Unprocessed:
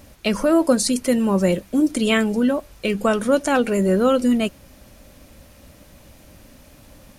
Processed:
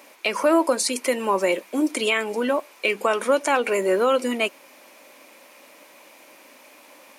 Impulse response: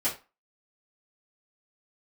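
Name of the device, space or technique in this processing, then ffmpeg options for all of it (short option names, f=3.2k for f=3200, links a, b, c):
laptop speaker: -af "highpass=f=320:w=0.5412,highpass=f=320:w=1.3066,equalizer=f=980:t=o:w=0.46:g=8,equalizer=f=2.3k:t=o:w=0.48:g=9,alimiter=limit=-10dB:level=0:latency=1:release=148"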